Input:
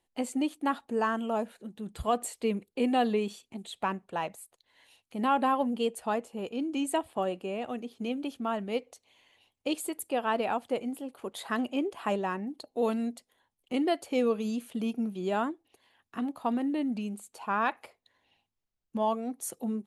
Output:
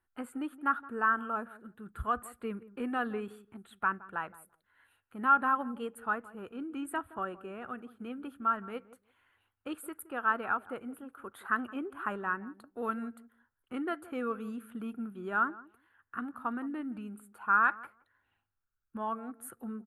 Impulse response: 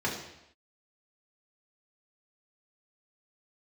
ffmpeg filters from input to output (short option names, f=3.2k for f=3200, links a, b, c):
-filter_complex "[0:a]firequalizer=gain_entry='entry(110,0);entry(160,-8);entry(360,-7);entry(600,-13);entry(960,-5);entry(1400,12);entry(2000,-7);entry(5600,-29);entry(9000,-10);entry(14000,-3)':delay=0.05:min_phase=1,asplit=2[a][b];[b]adelay=169,lowpass=f=840:p=1,volume=-16dB,asplit=2[c][d];[d]adelay=169,lowpass=f=840:p=1,volume=0.15[e];[c][e]amix=inputs=2:normalize=0[f];[a][f]amix=inputs=2:normalize=0"